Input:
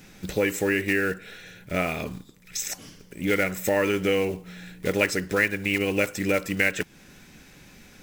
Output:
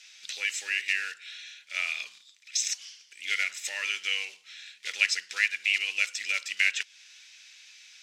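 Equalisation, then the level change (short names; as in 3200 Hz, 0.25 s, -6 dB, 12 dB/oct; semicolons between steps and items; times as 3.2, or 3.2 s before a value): Butterworth band-pass 4100 Hz, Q 1; +5.5 dB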